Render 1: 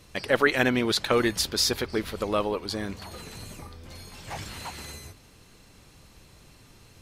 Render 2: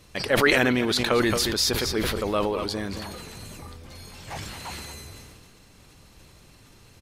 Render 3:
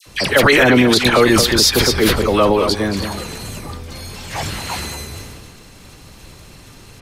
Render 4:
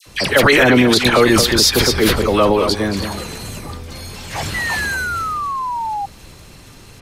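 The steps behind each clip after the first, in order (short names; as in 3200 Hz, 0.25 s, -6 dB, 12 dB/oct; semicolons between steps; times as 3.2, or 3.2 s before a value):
echo 0.223 s -14 dB; sustainer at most 26 dB/s
dispersion lows, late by 65 ms, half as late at 1400 Hz; maximiser +12.5 dB; gain -1 dB
painted sound fall, 4.54–6.06, 790–2000 Hz -22 dBFS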